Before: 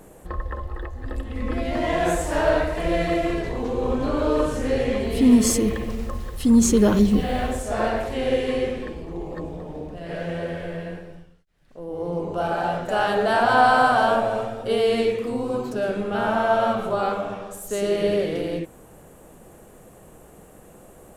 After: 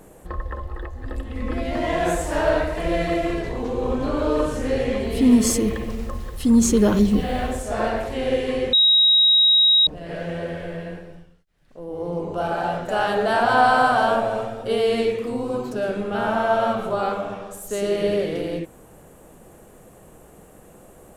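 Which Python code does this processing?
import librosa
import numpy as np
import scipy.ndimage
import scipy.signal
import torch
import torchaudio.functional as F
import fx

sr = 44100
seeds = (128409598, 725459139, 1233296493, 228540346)

y = fx.edit(x, sr, fx.bleep(start_s=8.73, length_s=1.14, hz=3810.0, db=-12.0), tone=tone)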